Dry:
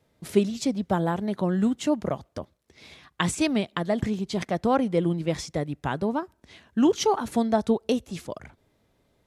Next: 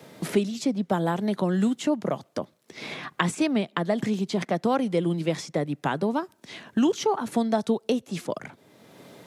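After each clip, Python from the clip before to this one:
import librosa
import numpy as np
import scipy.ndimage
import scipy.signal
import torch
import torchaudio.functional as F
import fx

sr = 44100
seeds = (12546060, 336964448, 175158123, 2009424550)

y = scipy.signal.sosfilt(scipy.signal.butter(4, 140.0, 'highpass', fs=sr, output='sos'), x)
y = fx.band_squash(y, sr, depth_pct=70)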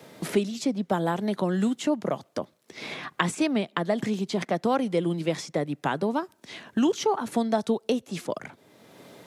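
y = fx.peak_eq(x, sr, hz=150.0, db=-2.5, octaves=1.5)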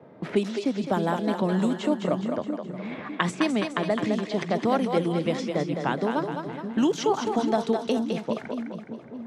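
y = fx.env_lowpass(x, sr, base_hz=970.0, full_db=-20.0)
y = fx.echo_split(y, sr, split_hz=330.0, low_ms=610, high_ms=209, feedback_pct=52, wet_db=-5.5)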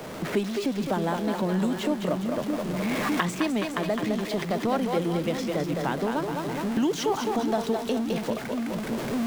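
y = x + 0.5 * 10.0 ** (-30.5 / 20.0) * np.sign(x)
y = fx.recorder_agc(y, sr, target_db=-14.5, rise_db_per_s=9.4, max_gain_db=30)
y = F.gain(torch.from_numpy(y), -3.5).numpy()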